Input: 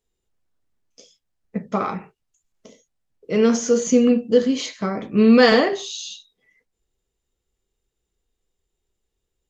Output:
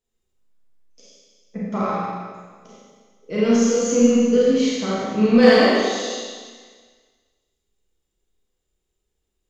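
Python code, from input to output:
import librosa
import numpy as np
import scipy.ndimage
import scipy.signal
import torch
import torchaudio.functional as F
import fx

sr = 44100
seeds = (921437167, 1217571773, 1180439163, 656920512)

p1 = 10.0 ** (-12.0 / 20.0) * np.tanh(x / 10.0 ** (-12.0 / 20.0))
p2 = x + F.gain(torch.from_numpy(p1), -4.5).numpy()
p3 = fx.rev_schroeder(p2, sr, rt60_s=1.6, comb_ms=30, drr_db=-6.5)
y = F.gain(torch.from_numpy(p3), -10.0).numpy()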